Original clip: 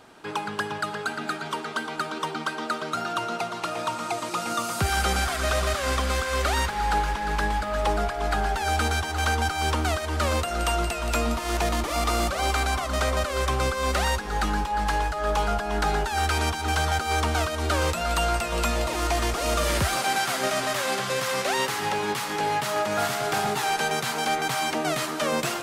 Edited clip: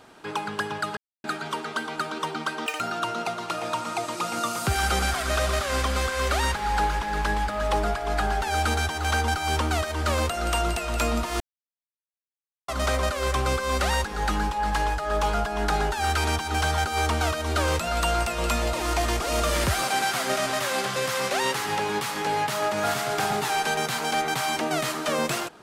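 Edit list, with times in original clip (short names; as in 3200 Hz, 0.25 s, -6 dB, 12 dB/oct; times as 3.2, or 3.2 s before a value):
0.97–1.24 mute
2.66–2.94 speed 197%
11.54–12.82 mute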